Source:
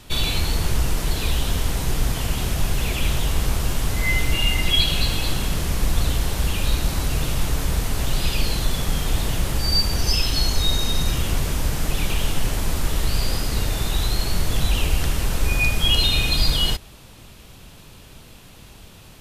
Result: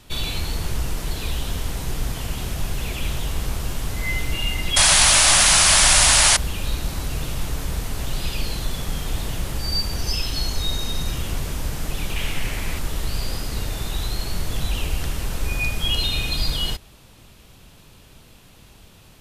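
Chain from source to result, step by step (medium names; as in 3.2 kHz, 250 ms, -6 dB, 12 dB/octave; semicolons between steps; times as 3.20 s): 4.76–6.37 s: painted sound noise 550–11000 Hz -11 dBFS; 12.16–12.79 s: peaking EQ 2.2 kHz +10.5 dB 0.75 oct; trim -4 dB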